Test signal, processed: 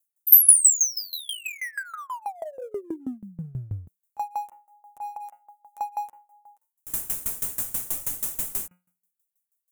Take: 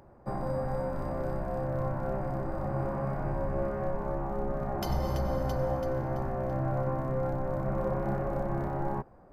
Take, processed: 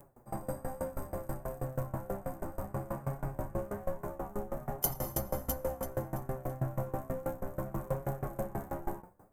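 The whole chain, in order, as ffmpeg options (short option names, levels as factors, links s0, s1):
-filter_complex "[0:a]flanger=delay=6.9:depth=5:regen=3:speed=0.62:shape=triangular,bandreject=f=178.9:t=h:w=4,bandreject=f=357.8:t=h:w=4,bandreject=f=536.7:t=h:w=4,bandreject=f=715.6:t=h:w=4,bandreject=f=894.5:t=h:w=4,bandreject=f=1073.4:t=h:w=4,bandreject=f=1252.3:t=h:w=4,bandreject=f=1431.2:t=h:w=4,bandreject=f=1610.1:t=h:w=4,bandreject=f=1789:t=h:w=4,bandreject=f=1967.9:t=h:w=4,bandreject=f=2146.8:t=h:w=4,bandreject=f=2325.7:t=h:w=4,bandreject=f=2504.6:t=h:w=4,bandreject=f=2683.5:t=h:w=4,bandreject=f=2862.4:t=h:w=4,asplit=2[s0][s1];[s1]asoftclip=type=hard:threshold=0.0178,volume=0.355[s2];[s0][s2]amix=inputs=2:normalize=0,aexciter=amount=10.5:drive=5.2:freq=6700,aeval=exprs='val(0)*pow(10,-22*if(lt(mod(6.2*n/s,1),2*abs(6.2)/1000),1-mod(6.2*n/s,1)/(2*abs(6.2)/1000),(mod(6.2*n/s,1)-2*abs(6.2)/1000)/(1-2*abs(6.2)/1000))/20)':c=same,volume=1.26"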